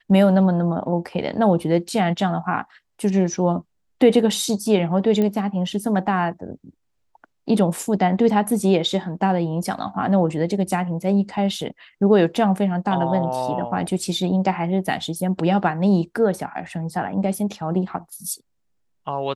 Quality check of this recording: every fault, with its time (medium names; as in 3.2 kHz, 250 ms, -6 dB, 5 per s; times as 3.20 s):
5.22 s: pop -12 dBFS